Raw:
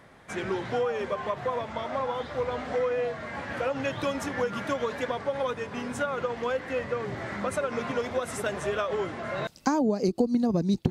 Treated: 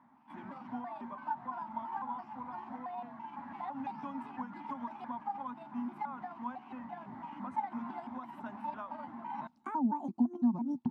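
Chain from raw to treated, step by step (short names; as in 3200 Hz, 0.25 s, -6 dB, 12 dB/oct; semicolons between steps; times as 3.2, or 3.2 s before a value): trilling pitch shifter +6.5 st, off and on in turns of 0.168 s; double band-pass 470 Hz, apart 1.9 oct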